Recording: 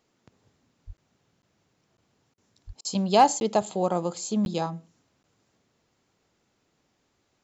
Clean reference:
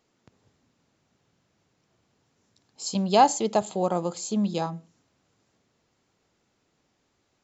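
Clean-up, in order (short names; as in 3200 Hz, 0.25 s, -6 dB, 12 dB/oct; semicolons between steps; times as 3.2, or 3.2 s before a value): clip repair -8.5 dBFS; de-plosive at 0.86/2.66; interpolate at 0.97/1.42/1.97/3.4/4.45/5.23, 11 ms; interpolate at 2.34/2.81, 37 ms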